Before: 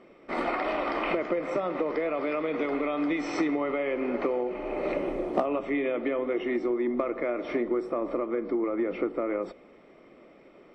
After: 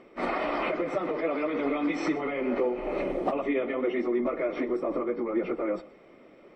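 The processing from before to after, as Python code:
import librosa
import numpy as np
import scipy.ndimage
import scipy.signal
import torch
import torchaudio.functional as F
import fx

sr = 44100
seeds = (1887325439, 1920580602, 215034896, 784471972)

y = fx.dynamic_eq(x, sr, hz=180.0, q=6.8, threshold_db=-58.0, ratio=4.0, max_db=3)
y = fx.stretch_vocoder_free(y, sr, factor=0.61)
y = y + 10.0 ** (-20.5 / 20.0) * np.pad(y, (int(122 * sr / 1000.0), 0))[:len(y)]
y = F.gain(torch.from_numpy(y), 3.5).numpy()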